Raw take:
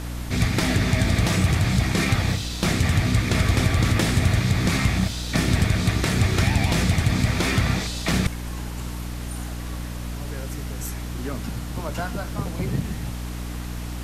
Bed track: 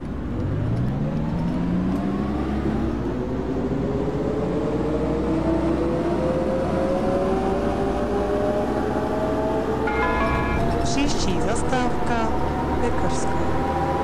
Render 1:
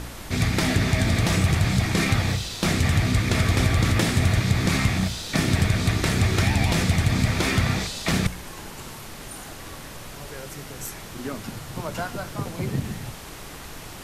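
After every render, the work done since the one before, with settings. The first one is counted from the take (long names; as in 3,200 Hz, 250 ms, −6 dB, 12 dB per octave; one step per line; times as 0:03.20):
hum removal 60 Hz, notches 5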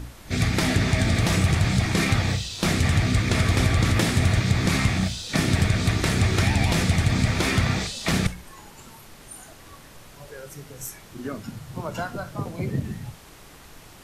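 noise reduction from a noise print 8 dB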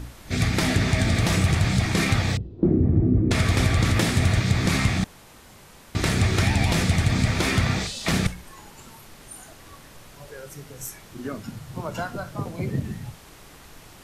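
0:02.37–0:03.31: low-pass with resonance 340 Hz, resonance Q 3.7
0:05.04–0:05.95: fill with room tone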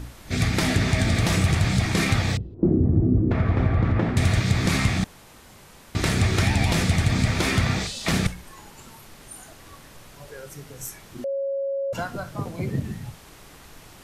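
0:02.54–0:04.17: low-pass filter 1,300 Hz
0:11.24–0:11.93: beep over 550 Hz −23.5 dBFS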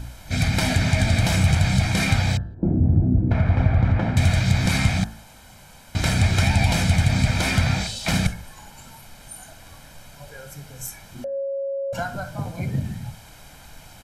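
comb filter 1.3 ms, depth 61%
hum removal 54.51 Hz, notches 33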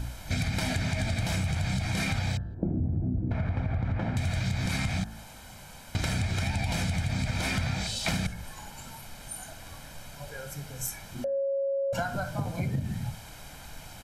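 brickwall limiter −11 dBFS, peak gain reduction 4.5 dB
downward compressor 6 to 1, threshold −26 dBFS, peak gain reduction 11 dB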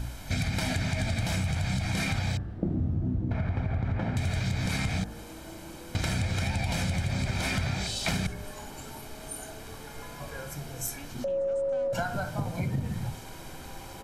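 mix in bed track −24.5 dB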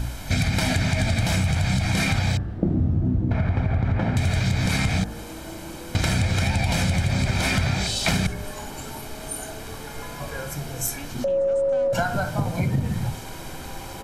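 level +7 dB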